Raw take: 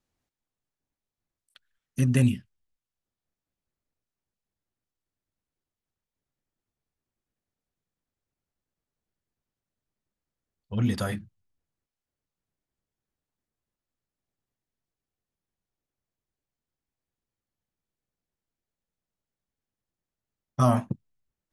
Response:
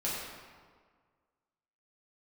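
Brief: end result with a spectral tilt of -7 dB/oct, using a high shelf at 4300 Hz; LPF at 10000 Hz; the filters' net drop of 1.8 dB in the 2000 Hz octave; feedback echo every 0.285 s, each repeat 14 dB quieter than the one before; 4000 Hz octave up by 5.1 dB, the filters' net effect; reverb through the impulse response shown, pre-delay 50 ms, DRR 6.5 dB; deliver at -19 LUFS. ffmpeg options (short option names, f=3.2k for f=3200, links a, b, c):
-filter_complex "[0:a]lowpass=10k,equalizer=f=2k:t=o:g=-5.5,equalizer=f=4k:t=o:g=7,highshelf=f=4.3k:g=3.5,aecho=1:1:285|570:0.2|0.0399,asplit=2[a][b];[1:a]atrim=start_sample=2205,adelay=50[c];[b][c]afir=irnorm=-1:irlink=0,volume=-12.5dB[d];[a][d]amix=inputs=2:normalize=0,volume=7.5dB"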